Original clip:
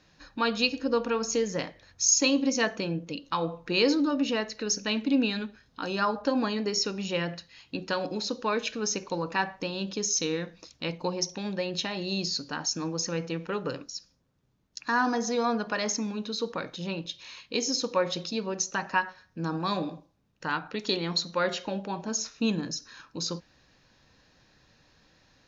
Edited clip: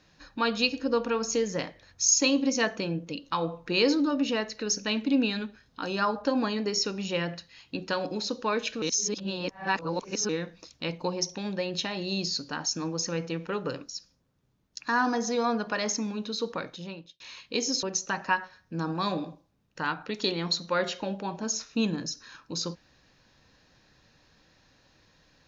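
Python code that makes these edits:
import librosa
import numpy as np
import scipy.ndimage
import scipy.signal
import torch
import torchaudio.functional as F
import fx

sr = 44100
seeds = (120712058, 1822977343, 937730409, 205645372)

y = fx.edit(x, sr, fx.reverse_span(start_s=8.82, length_s=1.47),
    fx.fade_out_span(start_s=16.57, length_s=0.63),
    fx.cut(start_s=17.83, length_s=0.65), tone=tone)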